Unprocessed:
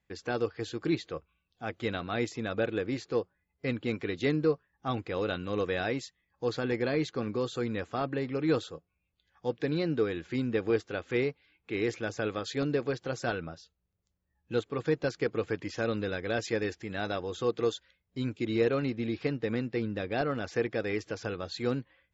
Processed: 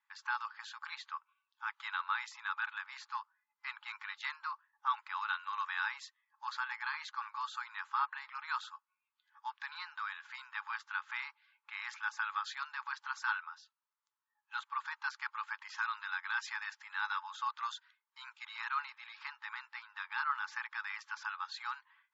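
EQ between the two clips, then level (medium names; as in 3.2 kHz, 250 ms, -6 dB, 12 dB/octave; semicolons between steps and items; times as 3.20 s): brick-wall FIR high-pass 830 Hz; distance through air 68 m; resonant high shelf 1.7 kHz -6 dB, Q 1.5; +4.0 dB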